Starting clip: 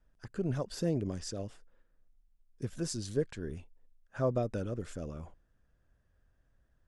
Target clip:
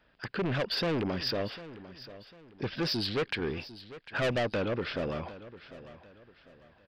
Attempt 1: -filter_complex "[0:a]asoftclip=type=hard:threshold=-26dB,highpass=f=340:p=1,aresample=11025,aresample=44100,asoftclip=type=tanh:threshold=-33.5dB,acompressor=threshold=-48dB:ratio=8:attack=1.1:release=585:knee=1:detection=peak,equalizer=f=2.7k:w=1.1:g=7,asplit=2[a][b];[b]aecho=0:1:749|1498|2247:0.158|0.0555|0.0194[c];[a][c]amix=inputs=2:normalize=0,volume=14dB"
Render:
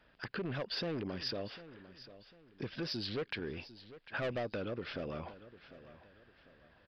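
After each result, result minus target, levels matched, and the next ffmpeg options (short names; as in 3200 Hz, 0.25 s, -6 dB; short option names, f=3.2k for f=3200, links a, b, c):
compressor: peak gain reduction +12.5 dB; soft clip: distortion -5 dB
-filter_complex "[0:a]asoftclip=type=hard:threshold=-26dB,highpass=f=340:p=1,aresample=11025,aresample=44100,asoftclip=type=tanh:threshold=-33.5dB,equalizer=f=2.7k:w=1.1:g=7,asplit=2[a][b];[b]aecho=0:1:749|1498|2247:0.158|0.0555|0.0194[c];[a][c]amix=inputs=2:normalize=0,volume=14dB"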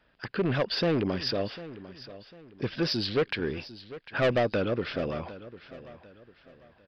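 soft clip: distortion -5 dB
-filter_complex "[0:a]asoftclip=type=hard:threshold=-26dB,highpass=f=340:p=1,aresample=11025,aresample=44100,asoftclip=type=tanh:threshold=-40.5dB,equalizer=f=2.7k:w=1.1:g=7,asplit=2[a][b];[b]aecho=0:1:749|1498|2247:0.158|0.0555|0.0194[c];[a][c]amix=inputs=2:normalize=0,volume=14dB"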